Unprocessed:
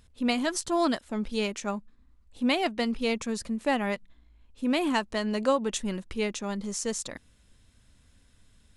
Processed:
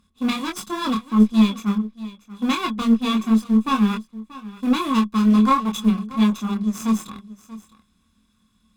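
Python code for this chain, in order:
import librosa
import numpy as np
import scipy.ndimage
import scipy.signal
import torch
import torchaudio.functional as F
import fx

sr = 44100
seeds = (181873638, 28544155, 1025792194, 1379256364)

p1 = fx.lower_of_two(x, sr, delay_ms=0.8)
p2 = fx.low_shelf(p1, sr, hz=130.0, db=-9.0)
p3 = np.where(np.abs(p2) >= 10.0 ** (-29.0 / 20.0), p2, 0.0)
p4 = p2 + (p3 * librosa.db_to_amplitude(-5.0))
p5 = fx.small_body(p4, sr, hz=(210.0, 1100.0, 3400.0), ring_ms=85, db=18)
p6 = fx.chorus_voices(p5, sr, voices=6, hz=1.3, base_ms=25, depth_ms=3.0, mix_pct=40)
p7 = fx.cheby_harmonics(p6, sr, harmonics=(2,), levels_db=(-14,), full_scale_db=-3.5)
y = p7 + fx.echo_single(p7, sr, ms=634, db=-17.5, dry=0)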